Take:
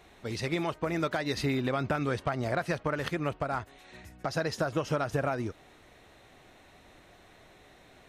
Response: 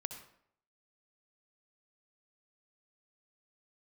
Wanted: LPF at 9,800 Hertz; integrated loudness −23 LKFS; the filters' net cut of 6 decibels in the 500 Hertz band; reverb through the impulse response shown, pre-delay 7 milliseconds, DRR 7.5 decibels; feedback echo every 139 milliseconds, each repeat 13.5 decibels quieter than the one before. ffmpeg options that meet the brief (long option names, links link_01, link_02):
-filter_complex "[0:a]lowpass=9800,equalizer=frequency=500:width_type=o:gain=-8,aecho=1:1:139|278:0.211|0.0444,asplit=2[link_01][link_02];[1:a]atrim=start_sample=2205,adelay=7[link_03];[link_02][link_03]afir=irnorm=-1:irlink=0,volume=-6dB[link_04];[link_01][link_04]amix=inputs=2:normalize=0,volume=9.5dB"